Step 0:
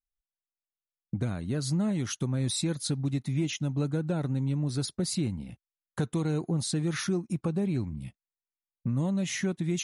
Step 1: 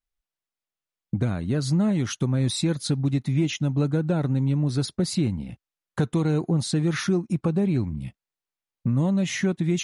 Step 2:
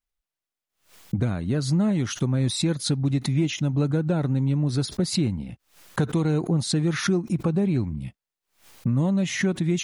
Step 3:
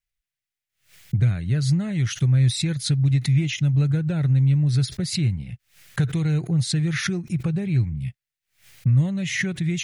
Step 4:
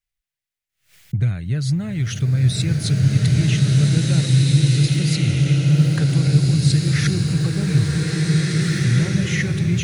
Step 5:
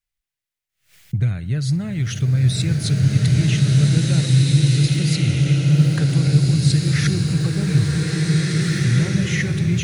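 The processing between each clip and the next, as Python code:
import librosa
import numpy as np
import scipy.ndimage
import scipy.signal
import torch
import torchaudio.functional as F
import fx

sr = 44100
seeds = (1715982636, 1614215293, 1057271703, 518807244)

y1 = fx.high_shelf(x, sr, hz=6800.0, db=-9.5)
y1 = F.gain(torch.from_numpy(y1), 6.0).numpy()
y2 = fx.pre_swell(y1, sr, db_per_s=150.0)
y3 = fx.graphic_eq(y2, sr, hz=(125, 250, 500, 1000, 2000), db=(10, -11, -4, -11, 7))
y4 = fx.rev_bloom(y3, sr, seeds[0], attack_ms=1980, drr_db=-4.0)
y5 = fx.echo_feedback(y4, sr, ms=62, feedback_pct=56, wet_db=-21.0)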